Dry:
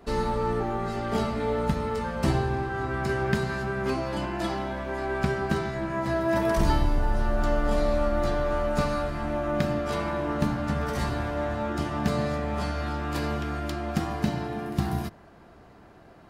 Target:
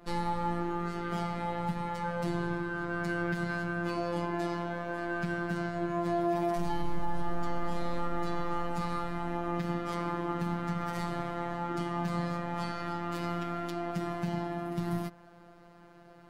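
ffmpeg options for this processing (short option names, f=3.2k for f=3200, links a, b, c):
-af "afftfilt=real='hypot(re,im)*cos(PI*b)':imag='0':win_size=1024:overlap=0.75,alimiter=limit=-18dB:level=0:latency=1:release=93,adynamicequalizer=threshold=0.00355:dfrequency=2900:dqfactor=0.7:tfrequency=2900:tqfactor=0.7:attack=5:release=100:ratio=0.375:range=1.5:mode=cutabove:tftype=highshelf"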